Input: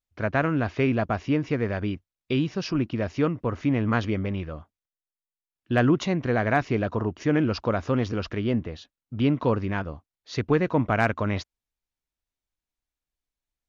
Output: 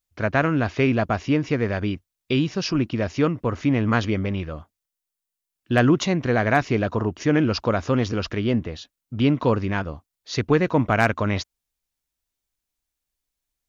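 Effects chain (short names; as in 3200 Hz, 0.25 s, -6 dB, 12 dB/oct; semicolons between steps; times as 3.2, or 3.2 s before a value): high shelf 4700 Hz +8.5 dB; gain +3 dB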